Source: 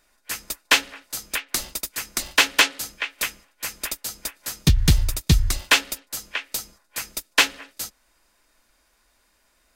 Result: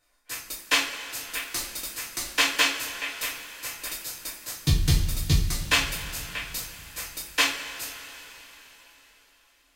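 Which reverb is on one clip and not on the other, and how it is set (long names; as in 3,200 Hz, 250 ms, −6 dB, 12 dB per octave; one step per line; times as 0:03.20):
coupled-rooms reverb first 0.36 s, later 4.2 s, from −18 dB, DRR −5 dB
level −10.5 dB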